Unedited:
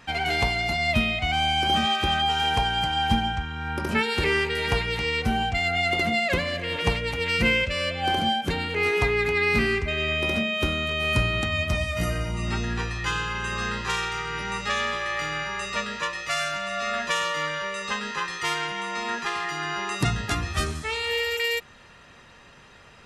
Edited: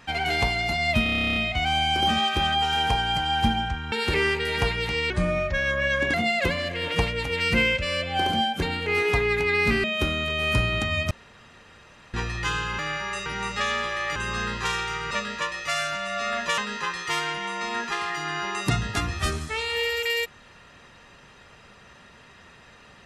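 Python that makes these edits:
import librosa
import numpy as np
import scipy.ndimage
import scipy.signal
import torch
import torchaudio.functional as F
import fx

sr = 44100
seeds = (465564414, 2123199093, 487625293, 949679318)

y = fx.edit(x, sr, fx.stutter(start_s=1.03, slice_s=0.03, count=12),
    fx.cut(start_s=3.59, length_s=0.43),
    fx.speed_span(start_s=5.2, length_s=0.82, speed=0.79),
    fx.cut(start_s=9.72, length_s=0.73),
    fx.room_tone_fill(start_s=11.72, length_s=1.03),
    fx.swap(start_s=13.4, length_s=0.95, other_s=15.25, other_length_s=0.47),
    fx.cut(start_s=17.19, length_s=0.73), tone=tone)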